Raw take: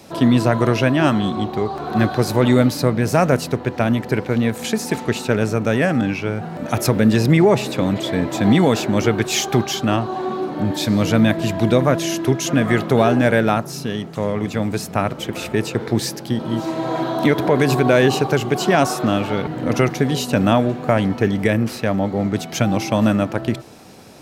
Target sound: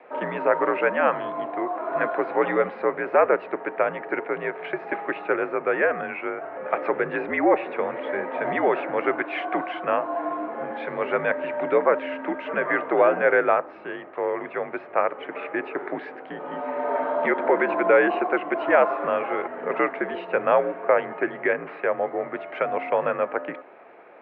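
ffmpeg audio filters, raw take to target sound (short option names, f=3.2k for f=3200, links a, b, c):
-af "highpass=f=490:t=q:w=0.5412,highpass=f=490:t=q:w=1.307,lowpass=f=2.3k:t=q:w=0.5176,lowpass=f=2.3k:t=q:w=0.7071,lowpass=f=2.3k:t=q:w=1.932,afreqshift=-66"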